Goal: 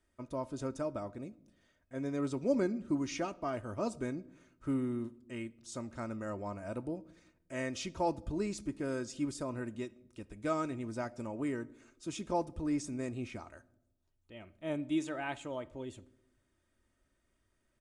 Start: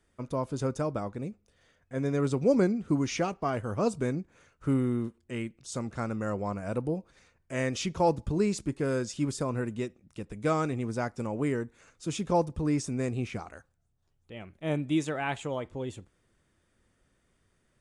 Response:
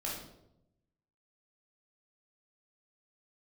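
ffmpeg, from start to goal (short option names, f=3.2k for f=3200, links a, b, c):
-filter_complex "[0:a]aecho=1:1:3.2:0.47,asplit=2[a][b];[1:a]atrim=start_sample=2205[c];[b][c]afir=irnorm=-1:irlink=0,volume=-20dB[d];[a][d]amix=inputs=2:normalize=0,volume=-8dB"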